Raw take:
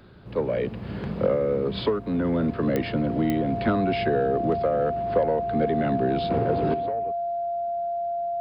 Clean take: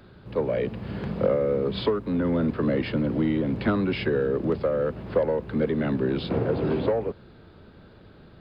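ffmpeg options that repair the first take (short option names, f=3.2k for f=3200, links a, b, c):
-af "adeclick=t=4,bandreject=f=690:w=30,asetnsamples=n=441:p=0,asendcmd='6.74 volume volume 10.5dB',volume=0dB"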